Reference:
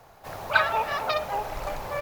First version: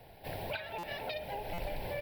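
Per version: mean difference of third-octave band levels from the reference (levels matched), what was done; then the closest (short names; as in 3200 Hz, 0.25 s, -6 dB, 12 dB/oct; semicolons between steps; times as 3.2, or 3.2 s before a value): 7.0 dB: compressor 10:1, threshold -32 dBFS, peak gain reduction 17.5 dB; fixed phaser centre 2900 Hz, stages 4; stuck buffer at 0.78/1.53, samples 256, times 8; gain +1.5 dB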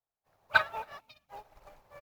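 16.0 dB: spectral gain 1–1.29, 310–2100 Hz -17 dB; echo 0.269 s -16 dB; upward expander 2.5:1, over -45 dBFS; gain -2 dB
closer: first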